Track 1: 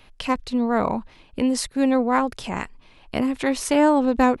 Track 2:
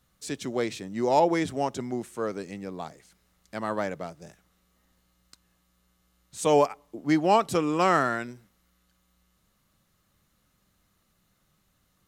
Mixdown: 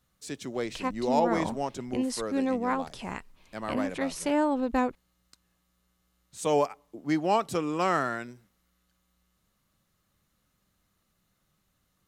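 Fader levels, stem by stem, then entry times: -8.5, -4.0 dB; 0.55, 0.00 s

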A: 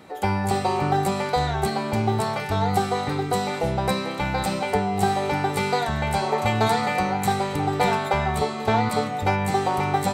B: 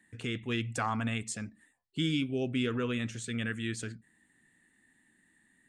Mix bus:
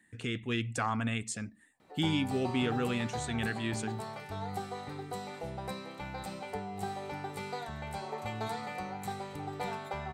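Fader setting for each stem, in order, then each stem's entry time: -16.0, 0.0 dB; 1.80, 0.00 s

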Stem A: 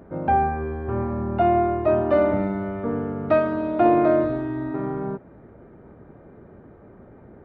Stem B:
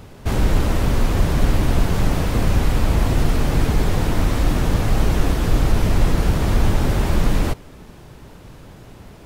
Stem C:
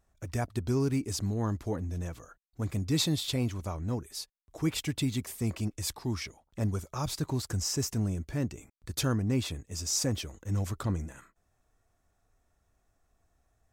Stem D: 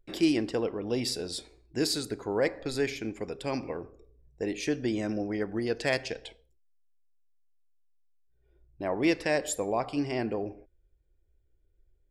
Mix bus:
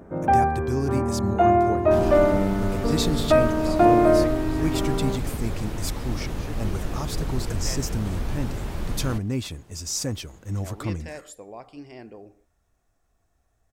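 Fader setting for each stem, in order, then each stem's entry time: +1.0, -12.0, +1.5, -11.5 dB; 0.00, 1.65, 0.00, 1.80 s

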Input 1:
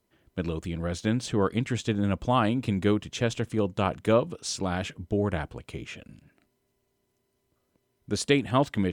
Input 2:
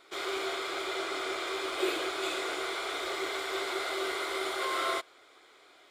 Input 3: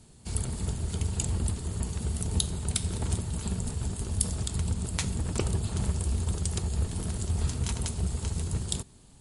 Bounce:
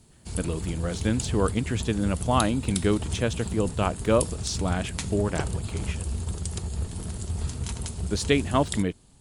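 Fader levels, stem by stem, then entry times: +0.5 dB, off, -1.5 dB; 0.00 s, off, 0.00 s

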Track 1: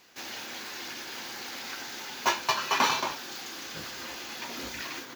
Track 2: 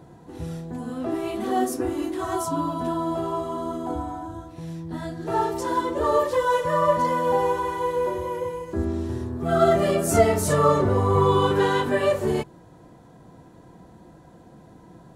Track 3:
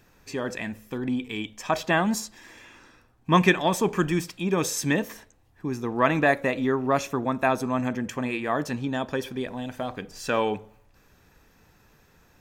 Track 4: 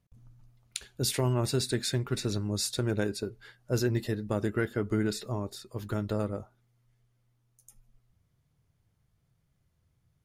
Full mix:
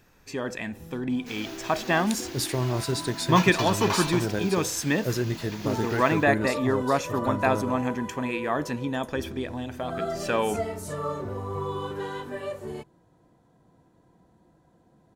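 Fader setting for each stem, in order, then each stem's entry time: -4.5, -12.5, -1.0, +0.5 dB; 1.10, 0.40, 0.00, 1.35 s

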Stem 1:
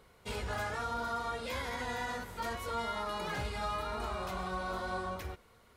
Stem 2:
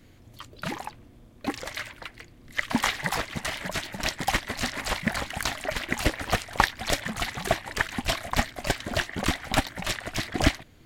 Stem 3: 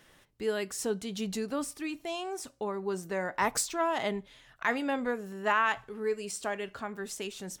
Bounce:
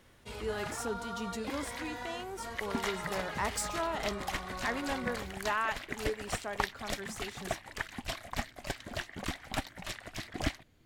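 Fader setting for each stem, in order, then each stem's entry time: -5.0, -11.0, -5.5 dB; 0.00, 0.00, 0.00 s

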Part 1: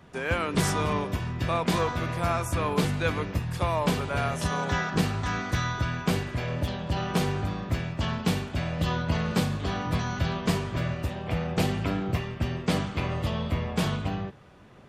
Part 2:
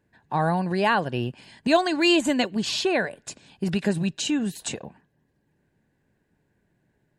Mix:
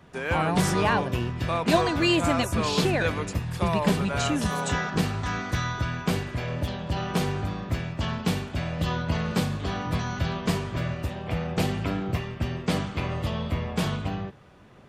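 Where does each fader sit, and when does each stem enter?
0.0, -3.5 dB; 0.00, 0.00 s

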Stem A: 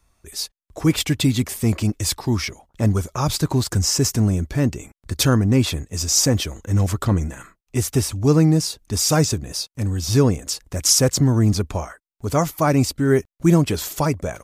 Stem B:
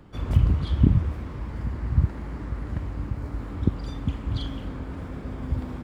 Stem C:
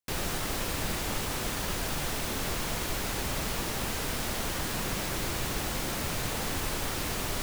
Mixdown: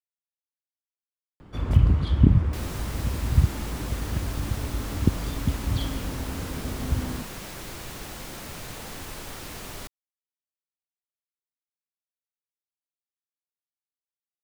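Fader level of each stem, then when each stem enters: off, +1.5 dB, -6.0 dB; off, 1.40 s, 2.45 s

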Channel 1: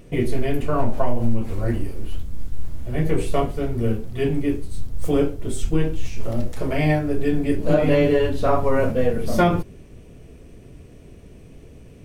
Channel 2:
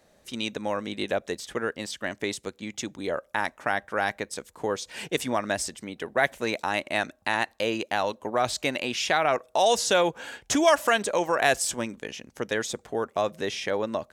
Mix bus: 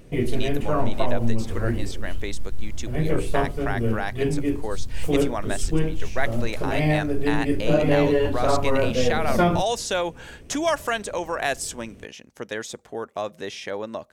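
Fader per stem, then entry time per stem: -2.0, -3.0 dB; 0.00, 0.00 s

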